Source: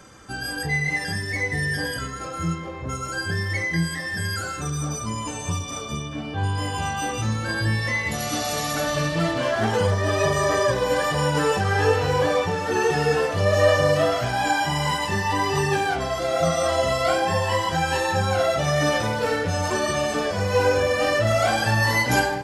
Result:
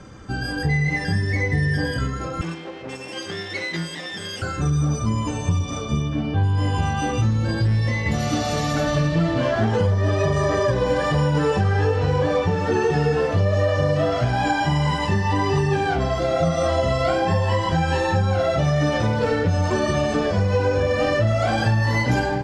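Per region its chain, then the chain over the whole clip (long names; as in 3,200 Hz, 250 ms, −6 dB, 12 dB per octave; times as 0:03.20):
0:02.41–0:04.42: lower of the sound and its delayed copy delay 0.37 ms + high-pass filter 390 Hz
0:07.30–0:08.06: dynamic equaliser 1,500 Hz, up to −7 dB, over −40 dBFS, Q 1.4 + gain into a clipping stage and back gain 21.5 dB
whole clip: low-pass filter 6,000 Hz 12 dB per octave; low-shelf EQ 390 Hz +11 dB; downward compressor, threshold −16 dBFS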